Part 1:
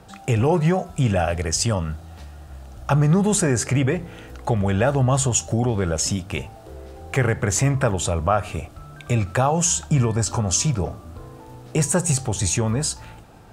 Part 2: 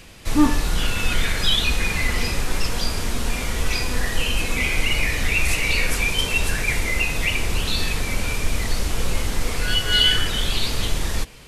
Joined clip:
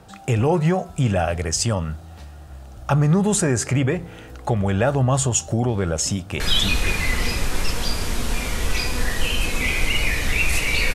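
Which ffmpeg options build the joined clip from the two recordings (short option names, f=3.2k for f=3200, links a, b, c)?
-filter_complex "[0:a]apad=whole_dur=10.94,atrim=end=10.94,atrim=end=6.402[a];[1:a]atrim=start=1.358:end=5.9[b];[a][b]acrossfade=d=0.004:c1=hsin:c2=hsin,asplit=2[c][d];[d]afade=t=in:st=6.07:d=0.01,afade=t=out:st=6.4:d=0.01,aecho=0:1:520|1040|1560:0.668344|0.100252|0.0150377[e];[c][e]amix=inputs=2:normalize=0"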